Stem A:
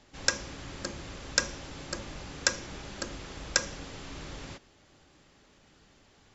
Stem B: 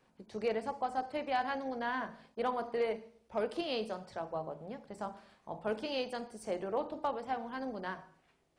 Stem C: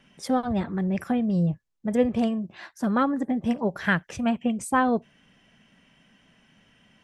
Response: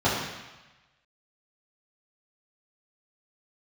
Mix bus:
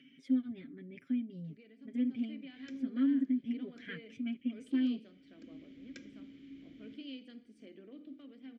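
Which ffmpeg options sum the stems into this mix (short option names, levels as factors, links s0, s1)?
-filter_complex "[0:a]tiltshelf=f=700:g=6,adelay=2400,volume=0.668[s0];[1:a]bandreject=f=2200:w=9.3,alimiter=level_in=1.41:limit=0.0631:level=0:latency=1:release=83,volume=0.708,dynaudnorm=f=120:g=17:m=2.66,adelay=1150,volume=0.473[s1];[2:a]aecho=1:1:7.4:0.83,volume=0.501,asplit=2[s2][s3];[s3]apad=whole_len=385604[s4];[s0][s4]sidechaincompress=threshold=0.00891:ratio=8:attack=16:release=482[s5];[s5][s1][s2]amix=inputs=3:normalize=0,acompressor=mode=upward:threshold=0.00794:ratio=2.5,asplit=3[s6][s7][s8];[s6]bandpass=f=270:t=q:w=8,volume=1[s9];[s7]bandpass=f=2290:t=q:w=8,volume=0.501[s10];[s8]bandpass=f=3010:t=q:w=8,volume=0.355[s11];[s9][s10][s11]amix=inputs=3:normalize=0"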